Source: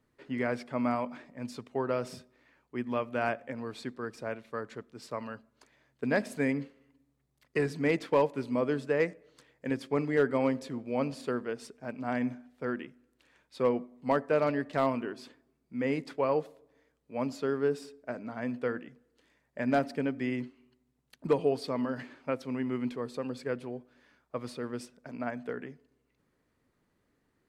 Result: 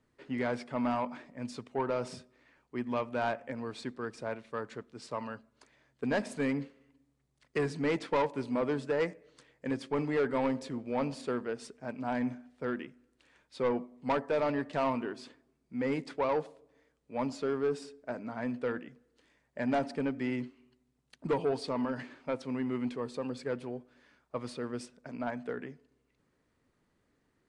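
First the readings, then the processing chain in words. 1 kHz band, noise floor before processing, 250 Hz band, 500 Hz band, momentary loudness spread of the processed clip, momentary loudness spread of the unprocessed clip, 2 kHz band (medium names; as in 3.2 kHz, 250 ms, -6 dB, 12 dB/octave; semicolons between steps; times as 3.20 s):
-0.5 dB, -76 dBFS, -1.5 dB, -2.5 dB, 12 LU, 14 LU, -2.5 dB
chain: dynamic bell 900 Hz, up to +7 dB, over -50 dBFS, Q 4.4; saturation -23 dBFS, distortion -12 dB; Vorbis 64 kbps 22.05 kHz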